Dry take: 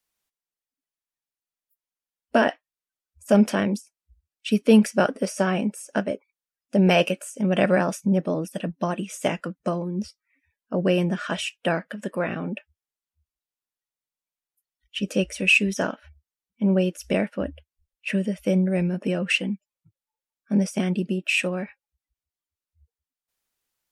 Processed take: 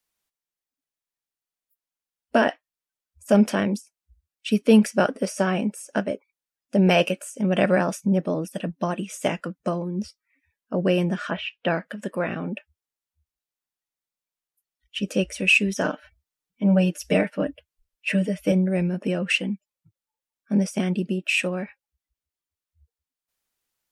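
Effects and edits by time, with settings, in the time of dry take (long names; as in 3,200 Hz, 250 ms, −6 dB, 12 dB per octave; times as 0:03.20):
0:11.29–0:11.81: low-pass filter 2,400 Hz → 6,100 Hz 24 dB per octave
0:15.84–0:18.52: comb filter 6.6 ms, depth 99%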